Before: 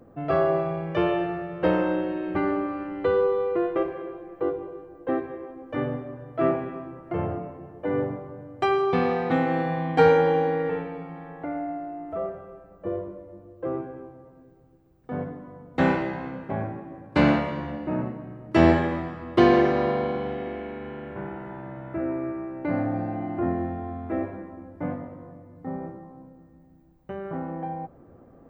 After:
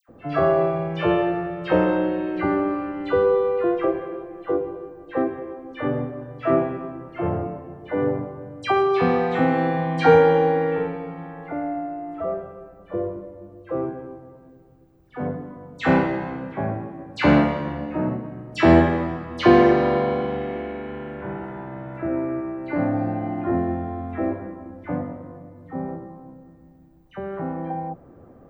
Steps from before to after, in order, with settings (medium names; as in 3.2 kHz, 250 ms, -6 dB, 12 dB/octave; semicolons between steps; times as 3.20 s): phase dispersion lows, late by 87 ms, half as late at 1.7 kHz; trim +3.5 dB